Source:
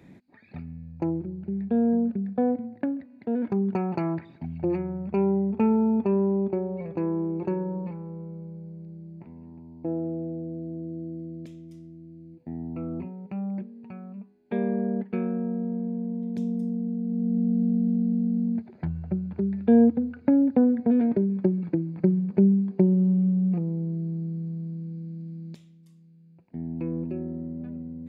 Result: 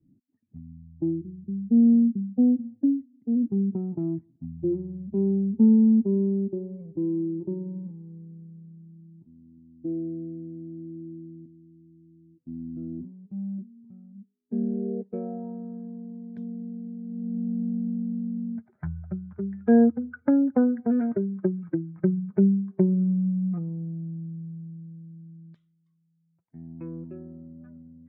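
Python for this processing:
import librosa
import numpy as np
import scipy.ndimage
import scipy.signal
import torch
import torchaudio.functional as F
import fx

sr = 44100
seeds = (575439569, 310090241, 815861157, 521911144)

y = fx.bin_expand(x, sr, power=1.5)
y = fx.mod_noise(y, sr, seeds[0], snr_db=14, at=(7.84, 9.06), fade=0.02)
y = fx.filter_sweep_lowpass(y, sr, from_hz=270.0, to_hz=1400.0, start_s=14.63, end_s=15.82, q=3.8)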